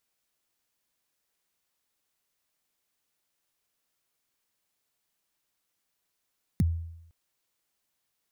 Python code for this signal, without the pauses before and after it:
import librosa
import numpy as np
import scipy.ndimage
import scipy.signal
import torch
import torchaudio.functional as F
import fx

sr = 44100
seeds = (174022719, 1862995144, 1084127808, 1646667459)

y = fx.drum_kick(sr, seeds[0], length_s=0.51, level_db=-18.0, start_hz=240.0, end_hz=83.0, sweep_ms=27.0, decay_s=0.81, click=True)